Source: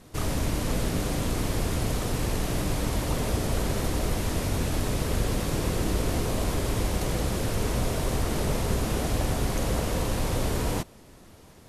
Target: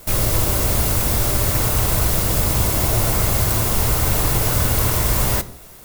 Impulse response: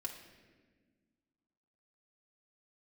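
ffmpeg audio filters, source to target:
-filter_complex "[0:a]crystalizer=i=6:c=0,asplit=2[a][b];[1:a]atrim=start_sample=2205,afade=t=out:st=0.4:d=0.01,atrim=end_sample=18081,lowshelf=f=150:g=10[c];[b][c]afir=irnorm=-1:irlink=0,volume=-5dB[d];[a][d]amix=inputs=2:normalize=0,asetrate=88200,aresample=44100"

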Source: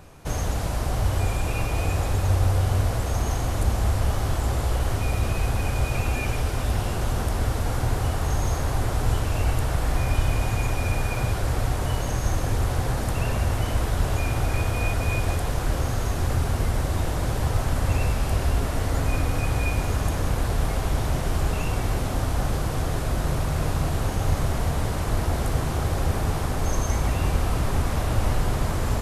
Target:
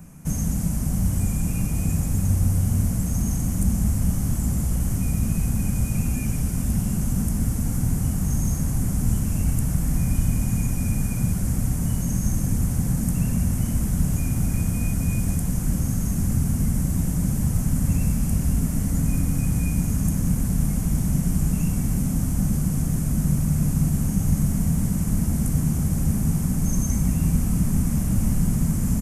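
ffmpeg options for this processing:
-filter_complex "[0:a]acrossover=split=430|3000[a][b][c];[b]acompressor=threshold=-50dB:ratio=1.5[d];[a][d][c]amix=inputs=3:normalize=0,firequalizer=gain_entry='entry(110,0);entry(180,15);entry(370,-8);entry(2200,-4);entry(3800,-14);entry(6200,3);entry(8900,7)':delay=0.05:min_phase=1"

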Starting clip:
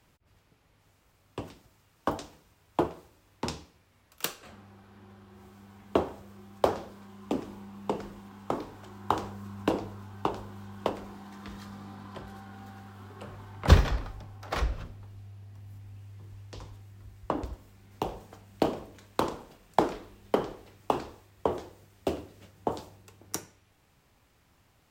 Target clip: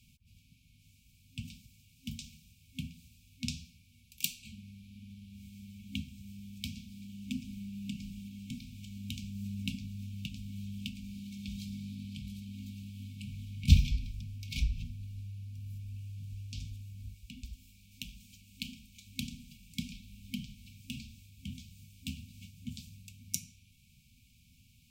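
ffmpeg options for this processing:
-filter_complex "[0:a]asplit=2[a][b];[b]acompressor=threshold=-37dB:ratio=6,volume=2.5dB[c];[a][c]amix=inputs=2:normalize=0,asettb=1/sr,asplit=3[d][e][f];[d]atrim=end=17.144[g];[e]atrim=start=17.14:end=19.07,asetpts=PTS-STARTPTS,afade=t=in:d=0.004:c=qsin,afade=t=out:st=1.926:d=0.004:c=qsin,equalizer=f=120:w=0.53:g=-11[h];[f]atrim=start=19.066[i];[g][h]acrossfade=d=0.004:c1=hsin:c2=qsin[j];[j][i]acrossfade=d=0.004:c1=qsin:c2=hsin,afftfilt=real='re*(1-between(b*sr/4096,260,2200))':imag='im*(1-between(b*sr/4096,260,2200))':win_size=4096:overlap=0.75,volume=-3.5dB"

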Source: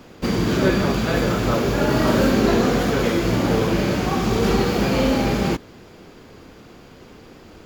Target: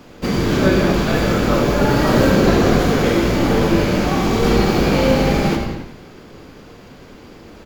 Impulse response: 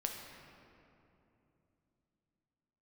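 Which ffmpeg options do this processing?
-filter_complex "[0:a]asplit=6[a][b][c][d][e][f];[b]adelay=89,afreqshift=-110,volume=-10.5dB[g];[c]adelay=178,afreqshift=-220,volume=-16.9dB[h];[d]adelay=267,afreqshift=-330,volume=-23.3dB[i];[e]adelay=356,afreqshift=-440,volume=-29.6dB[j];[f]adelay=445,afreqshift=-550,volume=-36dB[k];[a][g][h][i][j][k]amix=inputs=6:normalize=0[l];[1:a]atrim=start_sample=2205,afade=t=out:st=0.34:d=0.01,atrim=end_sample=15435[m];[l][m]afir=irnorm=-1:irlink=0,volume=2.5dB"

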